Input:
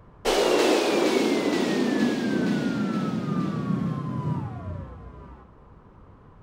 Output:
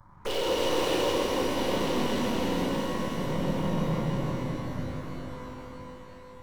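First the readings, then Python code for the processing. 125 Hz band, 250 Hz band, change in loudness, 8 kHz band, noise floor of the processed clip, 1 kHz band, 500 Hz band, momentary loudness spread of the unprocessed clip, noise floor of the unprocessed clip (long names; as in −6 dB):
−2.5 dB, −6.0 dB, −4.5 dB, −3.5 dB, −47 dBFS, −1.5 dB, −3.5 dB, 15 LU, −52 dBFS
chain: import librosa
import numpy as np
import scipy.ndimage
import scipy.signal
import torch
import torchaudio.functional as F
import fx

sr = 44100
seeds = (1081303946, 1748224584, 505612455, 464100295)

p1 = fx.chopper(x, sr, hz=0.63, depth_pct=60, duty_pct=65)
p2 = p1 + fx.echo_multitap(p1, sr, ms=(162, 194, 254), db=(-5.0, -18.5, -11.5), dry=0)
p3 = np.maximum(p2, 0.0)
p4 = fx.env_phaser(p3, sr, low_hz=440.0, high_hz=1400.0, full_db=-29.5)
p5 = np.clip(p4, -10.0 ** (-26.0 / 20.0), 10.0 ** (-26.0 / 20.0))
p6 = fx.notch(p5, sr, hz=640.0, q=14.0)
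p7 = fx.small_body(p6, sr, hz=(530.0, 940.0, 2900.0), ring_ms=45, db=11)
y = fx.rev_shimmer(p7, sr, seeds[0], rt60_s=3.8, semitones=12, shimmer_db=-8, drr_db=-1.5)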